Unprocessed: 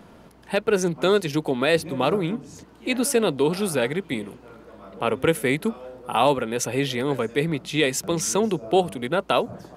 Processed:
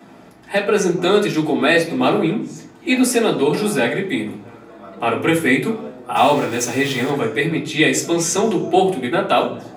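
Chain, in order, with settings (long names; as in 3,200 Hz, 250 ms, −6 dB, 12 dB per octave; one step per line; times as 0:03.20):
0:06.16–0:07.10: centre clipping without the shift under −31.5 dBFS
convolution reverb RT60 0.55 s, pre-delay 3 ms, DRR −7 dB
level −1 dB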